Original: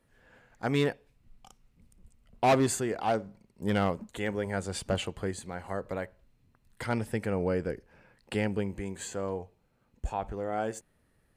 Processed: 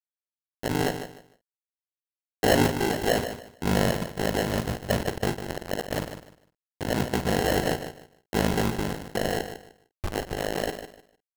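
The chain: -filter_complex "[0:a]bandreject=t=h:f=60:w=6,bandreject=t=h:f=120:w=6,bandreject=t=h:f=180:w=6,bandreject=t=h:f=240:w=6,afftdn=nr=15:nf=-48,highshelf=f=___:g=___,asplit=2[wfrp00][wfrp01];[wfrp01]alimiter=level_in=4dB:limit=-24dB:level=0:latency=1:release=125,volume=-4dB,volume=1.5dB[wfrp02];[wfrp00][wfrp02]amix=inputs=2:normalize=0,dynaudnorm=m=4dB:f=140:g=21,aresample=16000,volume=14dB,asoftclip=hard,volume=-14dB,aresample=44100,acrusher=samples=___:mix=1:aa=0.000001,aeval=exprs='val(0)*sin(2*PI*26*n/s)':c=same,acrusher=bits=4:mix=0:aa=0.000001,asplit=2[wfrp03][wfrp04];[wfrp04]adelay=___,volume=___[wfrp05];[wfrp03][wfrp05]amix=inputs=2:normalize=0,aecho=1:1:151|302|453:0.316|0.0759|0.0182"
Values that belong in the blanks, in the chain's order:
3.5k, -10, 37, 49, -12.5dB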